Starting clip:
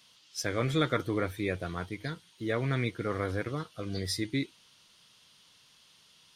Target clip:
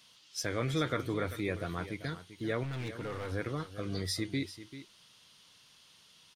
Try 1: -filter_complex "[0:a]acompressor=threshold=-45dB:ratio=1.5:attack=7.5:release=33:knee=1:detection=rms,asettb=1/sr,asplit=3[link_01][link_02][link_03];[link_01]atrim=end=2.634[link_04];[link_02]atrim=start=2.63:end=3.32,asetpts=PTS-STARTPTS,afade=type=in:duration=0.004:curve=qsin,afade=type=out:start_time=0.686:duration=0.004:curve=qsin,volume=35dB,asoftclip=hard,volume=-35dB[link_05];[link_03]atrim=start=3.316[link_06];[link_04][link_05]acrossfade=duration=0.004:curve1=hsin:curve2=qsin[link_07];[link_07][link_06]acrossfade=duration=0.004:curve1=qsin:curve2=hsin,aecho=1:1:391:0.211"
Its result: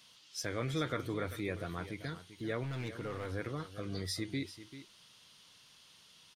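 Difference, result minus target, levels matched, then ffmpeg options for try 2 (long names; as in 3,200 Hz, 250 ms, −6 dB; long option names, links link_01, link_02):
downward compressor: peak gain reduction +3.5 dB
-filter_complex "[0:a]acompressor=threshold=-35dB:ratio=1.5:attack=7.5:release=33:knee=1:detection=rms,asettb=1/sr,asplit=3[link_01][link_02][link_03];[link_01]atrim=end=2.634[link_04];[link_02]atrim=start=2.63:end=3.32,asetpts=PTS-STARTPTS,afade=type=in:duration=0.004:curve=qsin,afade=type=out:start_time=0.686:duration=0.004:curve=qsin,volume=35dB,asoftclip=hard,volume=-35dB[link_05];[link_03]atrim=start=3.316[link_06];[link_04][link_05]acrossfade=duration=0.004:curve1=hsin:curve2=qsin[link_07];[link_07][link_06]acrossfade=duration=0.004:curve1=qsin:curve2=hsin,aecho=1:1:391:0.211"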